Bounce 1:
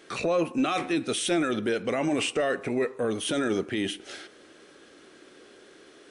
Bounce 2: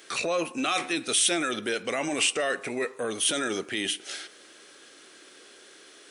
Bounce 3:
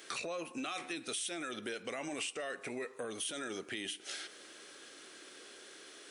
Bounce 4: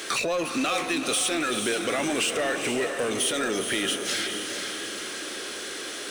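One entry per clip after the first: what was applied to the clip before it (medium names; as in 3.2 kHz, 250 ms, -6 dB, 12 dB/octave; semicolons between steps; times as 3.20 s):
tilt EQ +3 dB/octave
compression 4:1, threshold -37 dBFS, peak gain reduction 15 dB; trim -2 dB
echo that smears into a reverb 457 ms, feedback 48%, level -7.5 dB; power-law waveshaper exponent 0.7; trim +9 dB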